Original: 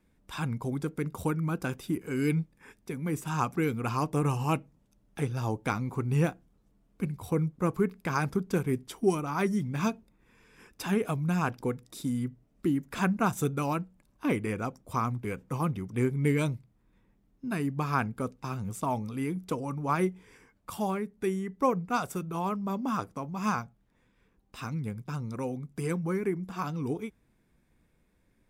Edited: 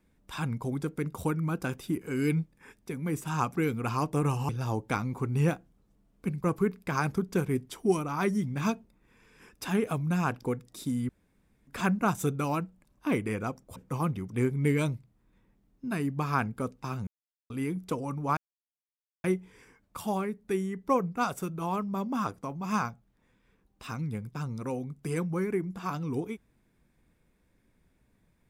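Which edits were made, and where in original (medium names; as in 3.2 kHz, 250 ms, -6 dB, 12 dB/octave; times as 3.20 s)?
4.49–5.25 s: delete
7.20–7.62 s: delete
12.27–12.85 s: room tone
14.94–15.36 s: delete
18.67–19.10 s: mute
19.97 s: insert silence 0.87 s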